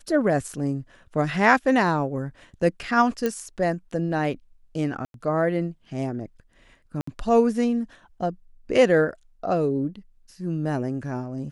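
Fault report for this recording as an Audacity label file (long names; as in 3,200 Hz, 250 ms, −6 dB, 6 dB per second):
0.530000	0.530000	drop-out 3.9 ms
3.260000	3.260000	click −12 dBFS
5.050000	5.140000	drop-out 92 ms
7.010000	7.070000	drop-out 64 ms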